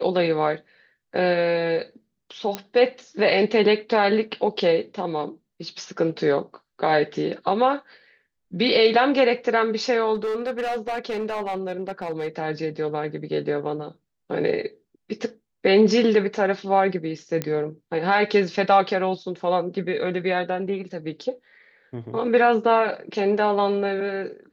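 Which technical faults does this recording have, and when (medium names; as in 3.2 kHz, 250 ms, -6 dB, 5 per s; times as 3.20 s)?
2.55 s: pop -11 dBFS
10.14–12.28 s: clipped -22.5 dBFS
17.42 s: pop -11 dBFS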